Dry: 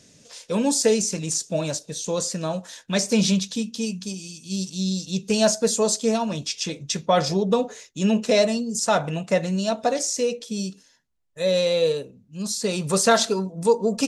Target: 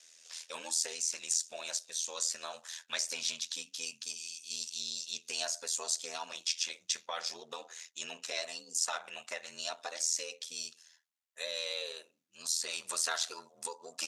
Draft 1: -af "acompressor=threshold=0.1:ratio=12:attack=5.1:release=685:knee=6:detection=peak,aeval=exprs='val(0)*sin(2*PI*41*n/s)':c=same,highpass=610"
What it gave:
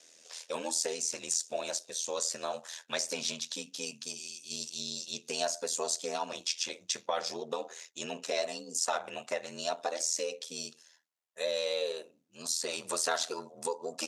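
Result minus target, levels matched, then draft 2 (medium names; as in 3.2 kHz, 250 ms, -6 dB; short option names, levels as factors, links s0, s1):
500 Hz band +9.5 dB
-af "acompressor=threshold=0.1:ratio=12:attack=5.1:release=685:knee=6:detection=peak,aeval=exprs='val(0)*sin(2*PI*41*n/s)':c=same,highpass=1300"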